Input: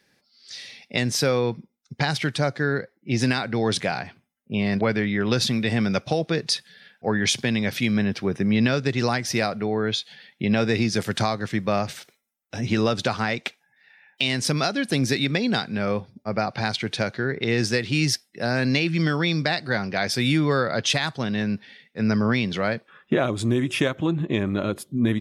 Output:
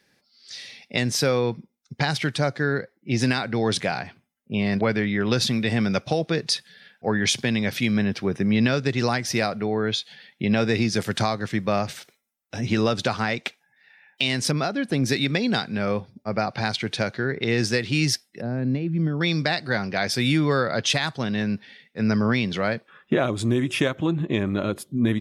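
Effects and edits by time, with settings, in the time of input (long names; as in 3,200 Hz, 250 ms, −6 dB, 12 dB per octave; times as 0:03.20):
0:14.51–0:15.06: high-shelf EQ 2,900 Hz −11.5 dB
0:18.41–0:19.21: resonant band-pass 160 Hz, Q 0.61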